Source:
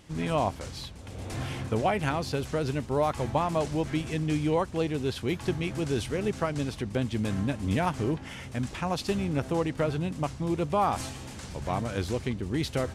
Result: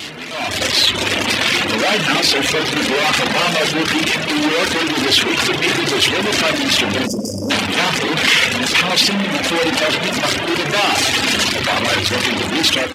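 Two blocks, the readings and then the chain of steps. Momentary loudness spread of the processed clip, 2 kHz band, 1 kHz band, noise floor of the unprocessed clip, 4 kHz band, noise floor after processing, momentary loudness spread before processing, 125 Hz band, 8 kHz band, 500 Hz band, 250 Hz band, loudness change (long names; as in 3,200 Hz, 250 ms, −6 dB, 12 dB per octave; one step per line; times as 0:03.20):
4 LU, +23.0 dB, +11.0 dB, −42 dBFS, +26.5 dB, −23 dBFS, 8 LU, +2.5 dB, +22.0 dB, +9.5 dB, +9.5 dB, +15.0 dB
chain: sign of each sample alone
high-shelf EQ 5,400 Hz −9.5 dB
spring reverb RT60 1.9 s, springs 40/50 ms, chirp 50 ms, DRR 2 dB
gain on a spectral selection 0:07.07–0:07.51, 630–4,700 Hz −30 dB
reverb reduction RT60 1.2 s
high-pass filter 86 Hz
flanger 0.18 Hz, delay 2.8 ms, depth 1.4 ms, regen −58%
meter weighting curve D
automatic gain control gain up to 16 dB
downsampling to 32,000 Hz
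mains-hum notches 60/120/180 Hz
saturating transformer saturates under 860 Hz
level +2.5 dB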